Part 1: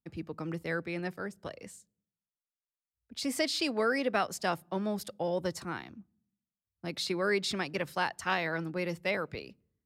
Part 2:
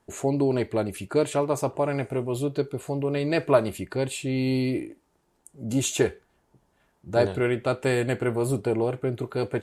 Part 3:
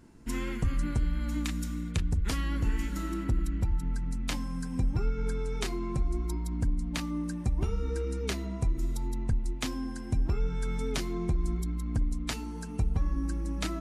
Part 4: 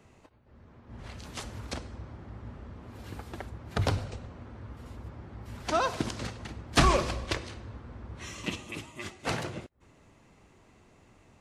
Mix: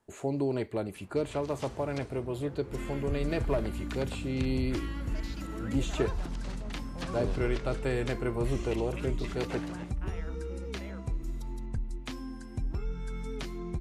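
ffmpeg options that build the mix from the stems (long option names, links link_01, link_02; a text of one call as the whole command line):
ffmpeg -i stem1.wav -i stem2.wav -i stem3.wav -i stem4.wav -filter_complex "[0:a]afwtdn=0.0178,alimiter=limit=-23.5dB:level=0:latency=1,adelay=1750,volume=-15dB[link_01];[1:a]aeval=exprs='clip(val(0),-1,0.211)':channel_layout=same,acrossover=split=480[link_02][link_03];[link_03]acompressor=threshold=-26dB:ratio=6[link_04];[link_02][link_04]amix=inputs=2:normalize=0,volume=-6.5dB[link_05];[2:a]adelay=2450,volume=-5.5dB[link_06];[3:a]acompressor=threshold=-36dB:ratio=5,adelay=250,volume=-3.5dB[link_07];[link_01][link_05][link_06][link_07]amix=inputs=4:normalize=0,acrossover=split=5000[link_08][link_09];[link_09]acompressor=threshold=-52dB:ratio=4:attack=1:release=60[link_10];[link_08][link_10]amix=inputs=2:normalize=0" out.wav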